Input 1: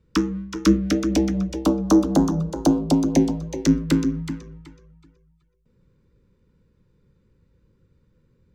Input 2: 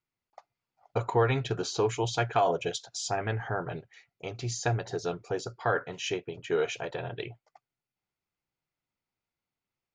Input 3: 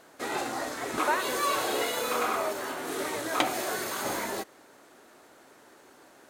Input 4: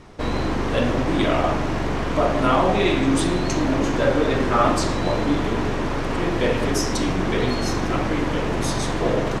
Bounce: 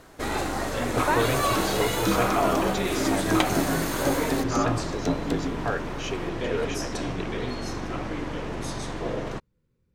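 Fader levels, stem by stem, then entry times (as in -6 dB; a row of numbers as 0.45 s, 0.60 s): -10.0 dB, -1.5 dB, +2.0 dB, -9.0 dB; 1.40 s, 0.00 s, 0.00 s, 0.00 s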